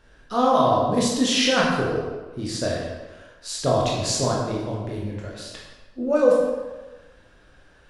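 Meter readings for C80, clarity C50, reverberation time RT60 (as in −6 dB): 3.0 dB, 0.5 dB, 1.3 s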